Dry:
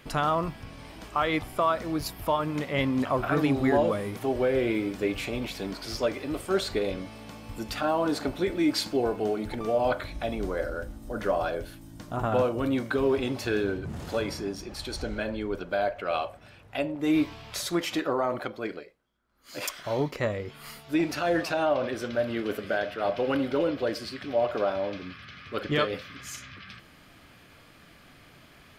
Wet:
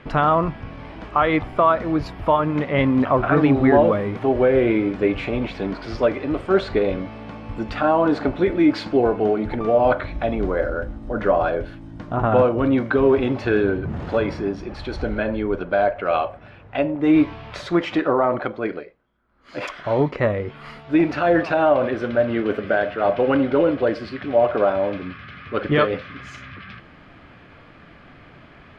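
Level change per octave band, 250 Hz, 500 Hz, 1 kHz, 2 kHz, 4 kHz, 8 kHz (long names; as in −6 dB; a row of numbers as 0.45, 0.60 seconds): +8.5 dB, +8.5 dB, +8.5 dB, +6.5 dB, −1.0 dB, below −10 dB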